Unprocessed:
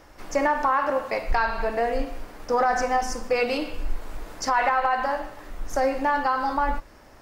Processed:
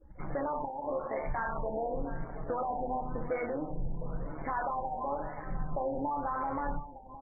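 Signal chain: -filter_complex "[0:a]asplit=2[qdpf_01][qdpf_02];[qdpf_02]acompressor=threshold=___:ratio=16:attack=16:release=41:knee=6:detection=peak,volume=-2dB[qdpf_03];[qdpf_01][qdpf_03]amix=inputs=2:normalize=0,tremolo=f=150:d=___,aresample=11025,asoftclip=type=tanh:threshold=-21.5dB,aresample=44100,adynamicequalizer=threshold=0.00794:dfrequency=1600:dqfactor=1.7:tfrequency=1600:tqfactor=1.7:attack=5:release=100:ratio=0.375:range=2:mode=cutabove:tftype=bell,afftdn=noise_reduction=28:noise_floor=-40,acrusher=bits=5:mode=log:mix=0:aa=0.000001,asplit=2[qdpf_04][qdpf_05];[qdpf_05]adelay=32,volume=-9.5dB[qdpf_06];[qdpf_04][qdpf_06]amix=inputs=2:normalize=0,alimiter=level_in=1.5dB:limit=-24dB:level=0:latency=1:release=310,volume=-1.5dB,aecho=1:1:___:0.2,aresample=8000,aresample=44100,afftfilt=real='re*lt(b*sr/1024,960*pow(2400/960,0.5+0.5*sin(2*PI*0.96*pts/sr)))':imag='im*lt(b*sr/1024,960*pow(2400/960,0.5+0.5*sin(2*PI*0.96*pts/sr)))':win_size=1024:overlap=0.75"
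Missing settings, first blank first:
-30dB, 0.71, 707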